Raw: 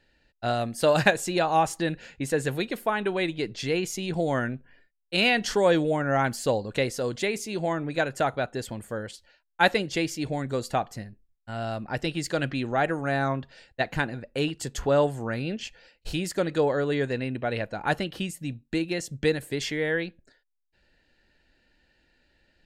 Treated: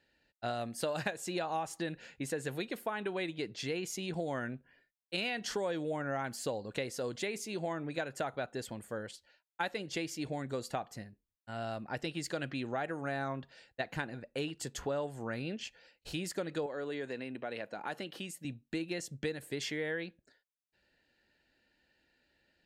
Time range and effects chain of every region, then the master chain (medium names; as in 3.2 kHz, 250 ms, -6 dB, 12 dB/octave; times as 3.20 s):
16.66–18.45 s: high-pass 200 Hz + compression 2:1, threshold -31 dBFS
whole clip: high-pass 130 Hz 6 dB/octave; compression 6:1, threshold -26 dBFS; trim -6 dB